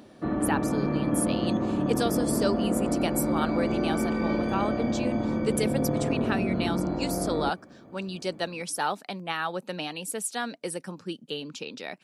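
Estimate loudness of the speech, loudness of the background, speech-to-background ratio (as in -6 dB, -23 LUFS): -32.5 LUFS, -28.0 LUFS, -4.5 dB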